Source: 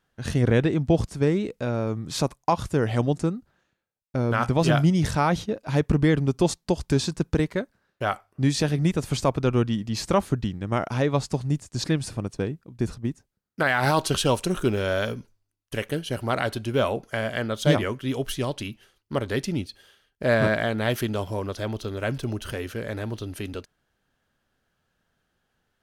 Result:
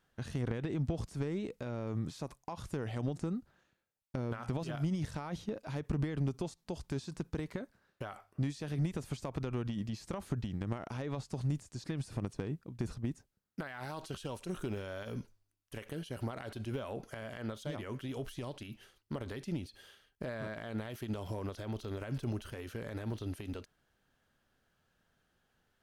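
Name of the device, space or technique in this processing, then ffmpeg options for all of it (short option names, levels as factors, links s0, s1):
de-esser from a sidechain: -filter_complex "[0:a]asplit=2[s0][s1];[s1]highpass=f=4500:p=1,apad=whole_len=1138819[s2];[s0][s2]sidechaincompress=threshold=0.002:ratio=4:attack=2.9:release=37,volume=0.794"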